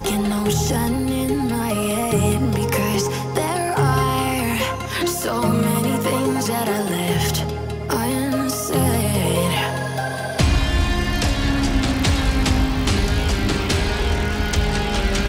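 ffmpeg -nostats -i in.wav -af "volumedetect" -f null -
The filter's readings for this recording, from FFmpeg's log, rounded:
mean_volume: -19.6 dB
max_volume: -6.4 dB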